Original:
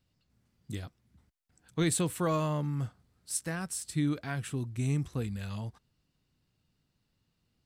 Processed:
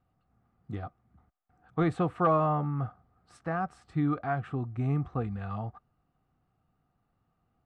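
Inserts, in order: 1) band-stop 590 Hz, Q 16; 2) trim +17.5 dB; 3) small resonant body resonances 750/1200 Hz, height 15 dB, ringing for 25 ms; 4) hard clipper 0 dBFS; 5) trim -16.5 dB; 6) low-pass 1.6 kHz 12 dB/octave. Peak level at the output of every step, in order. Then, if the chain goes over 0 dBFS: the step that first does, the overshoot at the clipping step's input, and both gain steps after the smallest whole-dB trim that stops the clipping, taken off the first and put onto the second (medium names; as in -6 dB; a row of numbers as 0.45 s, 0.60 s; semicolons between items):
-17.0 dBFS, +0.5 dBFS, +4.0 dBFS, 0.0 dBFS, -16.5 dBFS, -16.0 dBFS; step 2, 4.0 dB; step 2 +13.5 dB, step 5 -12.5 dB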